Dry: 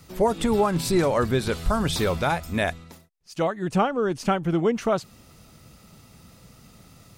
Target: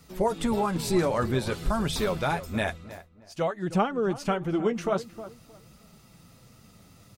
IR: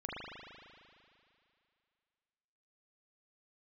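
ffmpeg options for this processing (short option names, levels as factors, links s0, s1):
-filter_complex "[0:a]asplit=2[s0][s1];[s1]adelay=312,lowpass=f=1600:p=1,volume=0.2,asplit=2[s2][s3];[s3]adelay=312,lowpass=f=1600:p=1,volume=0.25,asplit=2[s4][s5];[s5]adelay=312,lowpass=f=1600:p=1,volume=0.25[s6];[s0][s2][s4][s6]amix=inputs=4:normalize=0,flanger=delay=4.2:depth=7:regen=-38:speed=0.51:shape=triangular"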